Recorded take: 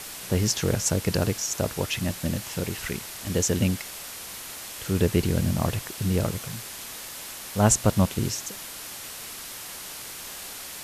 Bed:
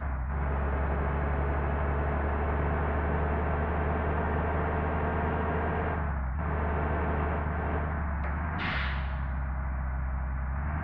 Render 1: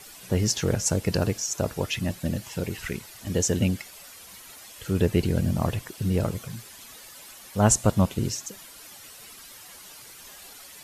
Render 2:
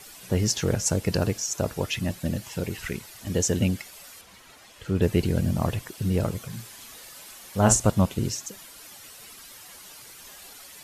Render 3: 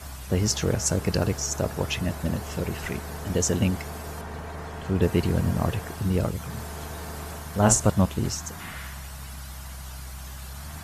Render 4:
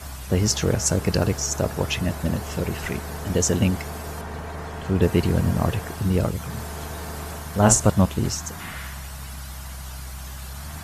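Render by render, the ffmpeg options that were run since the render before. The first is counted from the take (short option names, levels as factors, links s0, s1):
-af "afftdn=nr=11:nf=-39"
-filter_complex "[0:a]asettb=1/sr,asplit=3[s0][s1][s2];[s0]atrim=end=4.214[s3];[s1]atrim=start=4.21:end=5.02,asetpts=PTS-STARTPTS,afade=t=in:d=0.004:c=qsin,afade=t=out:st=0.806:d=0.004:c=qsin,aemphasis=mode=reproduction:type=50kf[s4];[s2]atrim=start=5.016[s5];[s3][s4]acrossfade=d=0.004:c1=hsin:c2=qsin[s6];[s6][s5]acrossfade=d=0.004:c1=qsin:c2=hsin,asettb=1/sr,asplit=3[s7][s8][s9];[s7]atrim=end=6.484[s10];[s8]atrim=start=6.48:end=7.9,asetpts=PTS-STARTPTS,afade=t=in:d=0.004:c=qsin,afade=t=out:st=1.416:d=0.004:c=qsin,asplit=2[s11][s12];[s12]adelay=42,volume=0.473[s13];[s11][s13]amix=inputs=2:normalize=0,atrim=end_sample=62622[s14];[s9]atrim=start=7.896[s15];[s10][s14]acrossfade=d=0.004:c1=hsin:c2=qsin[s16];[s16][s15]acrossfade=d=0.004:c1=qsin:c2=hsin"
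-filter_complex "[1:a]volume=0.422[s0];[0:a][s0]amix=inputs=2:normalize=0"
-af "volume=1.41"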